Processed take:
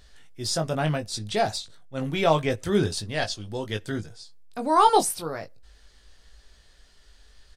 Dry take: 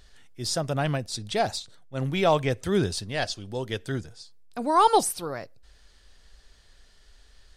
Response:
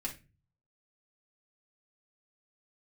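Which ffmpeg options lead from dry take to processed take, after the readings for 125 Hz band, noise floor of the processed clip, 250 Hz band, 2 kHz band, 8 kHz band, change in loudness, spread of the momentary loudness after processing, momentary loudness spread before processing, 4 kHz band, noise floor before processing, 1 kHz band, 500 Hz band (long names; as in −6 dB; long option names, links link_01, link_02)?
0.0 dB, −57 dBFS, +1.0 dB, +1.0 dB, +1.0 dB, +1.0 dB, 15 LU, 15 LU, +1.0 dB, −57 dBFS, +1.5 dB, +0.5 dB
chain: -filter_complex "[0:a]asplit=2[link_01][link_02];[link_02]adelay=19,volume=-6dB[link_03];[link_01][link_03]amix=inputs=2:normalize=0"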